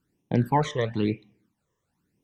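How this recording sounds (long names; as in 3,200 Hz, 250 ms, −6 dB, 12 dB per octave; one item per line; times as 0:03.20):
phaser sweep stages 12, 1 Hz, lowest notch 240–1,500 Hz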